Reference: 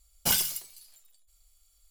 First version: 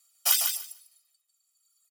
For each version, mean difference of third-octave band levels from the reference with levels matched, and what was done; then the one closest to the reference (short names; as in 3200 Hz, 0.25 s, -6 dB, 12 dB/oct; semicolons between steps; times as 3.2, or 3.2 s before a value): 6.5 dB: HPF 780 Hz 24 dB/oct; reverb removal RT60 1.8 s; comb 1.6 ms, depth 80%; on a send: feedback echo 0.149 s, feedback 16%, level -6 dB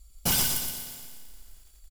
12.5 dB: low shelf 280 Hz +10.5 dB; hard clip -24 dBFS, distortion -8 dB; on a send: feedback echo 0.119 s, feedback 48%, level -6.5 dB; on the sum: lo-fi delay 86 ms, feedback 80%, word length 9-bit, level -13 dB; gain +3 dB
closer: first